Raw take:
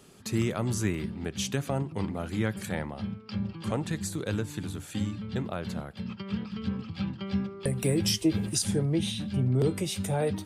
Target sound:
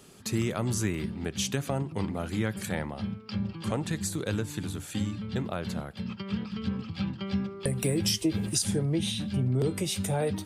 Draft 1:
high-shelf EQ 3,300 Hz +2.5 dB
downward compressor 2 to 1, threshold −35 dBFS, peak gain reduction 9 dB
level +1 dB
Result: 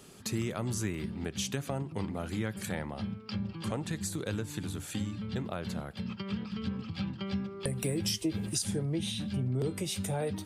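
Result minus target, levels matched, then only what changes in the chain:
downward compressor: peak gain reduction +4.5 dB
change: downward compressor 2 to 1, threshold −25.5 dBFS, peak gain reduction 4 dB

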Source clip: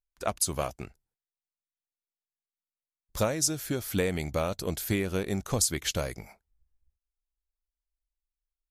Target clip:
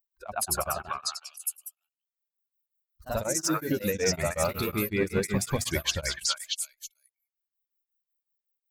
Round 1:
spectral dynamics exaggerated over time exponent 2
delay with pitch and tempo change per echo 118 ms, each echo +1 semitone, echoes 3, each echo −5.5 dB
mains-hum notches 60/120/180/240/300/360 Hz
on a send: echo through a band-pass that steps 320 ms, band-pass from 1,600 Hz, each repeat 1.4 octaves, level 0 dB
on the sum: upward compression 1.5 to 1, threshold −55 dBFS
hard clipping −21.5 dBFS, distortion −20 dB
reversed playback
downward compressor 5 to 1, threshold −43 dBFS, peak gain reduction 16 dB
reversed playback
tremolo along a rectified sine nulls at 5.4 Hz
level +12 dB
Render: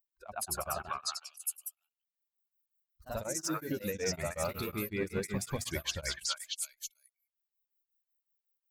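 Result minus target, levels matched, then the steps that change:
downward compressor: peak gain reduction +7.5 dB
change: downward compressor 5 to 1, threshold −33.5 dBFS, peak gain reduction 8.5 dB

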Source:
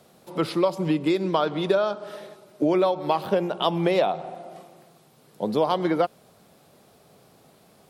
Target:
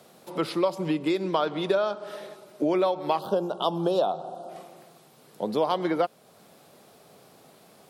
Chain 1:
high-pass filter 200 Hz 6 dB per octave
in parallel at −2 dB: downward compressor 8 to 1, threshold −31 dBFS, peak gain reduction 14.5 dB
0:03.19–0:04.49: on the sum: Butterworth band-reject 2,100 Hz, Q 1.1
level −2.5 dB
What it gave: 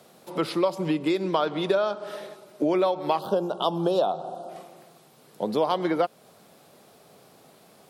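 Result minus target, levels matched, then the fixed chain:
downward compressor: peak gain reduction −8 dB
high-pass filter 200 Hz 6 dB per octave
in parallel at −2 dB: downward compressor 8 to 1, threshold −40 dBFS, peak gain reduction 22 dB
0:03.19–0:04.49: on the sum: Butterworth band-reject 2,100 Hz, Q 1.1
level −2.5 dB

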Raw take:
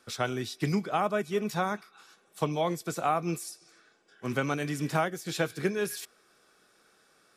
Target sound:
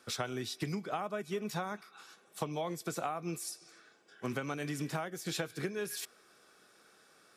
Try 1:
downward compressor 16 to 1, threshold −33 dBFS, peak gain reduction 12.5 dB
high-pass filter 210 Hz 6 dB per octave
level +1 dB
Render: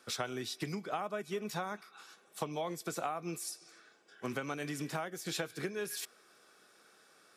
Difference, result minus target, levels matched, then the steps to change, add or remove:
125 Hz band −2.5 dB
change: high-pass filter 80 Hz 6 dB per octave

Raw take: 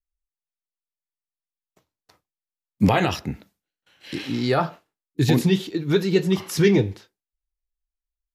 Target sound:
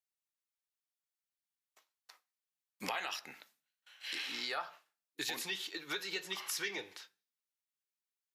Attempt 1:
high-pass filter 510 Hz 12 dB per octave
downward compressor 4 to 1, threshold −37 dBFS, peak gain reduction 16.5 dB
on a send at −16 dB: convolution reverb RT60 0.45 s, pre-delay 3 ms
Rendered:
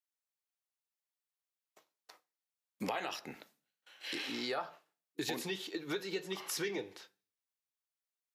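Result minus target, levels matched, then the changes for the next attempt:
500 Hz band +7.5 dB
change: high-pass filter 1,100 Hz 12 dB per octave

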